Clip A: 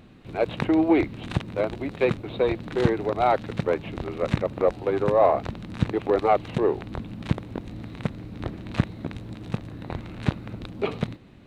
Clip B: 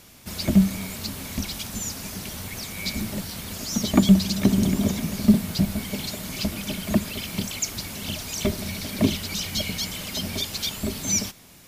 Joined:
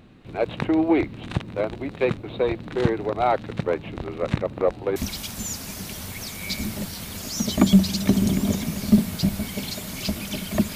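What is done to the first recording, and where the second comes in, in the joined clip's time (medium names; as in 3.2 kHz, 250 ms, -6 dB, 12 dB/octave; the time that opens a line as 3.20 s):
clip A
4.96 s: go over to clip B from 1.32 s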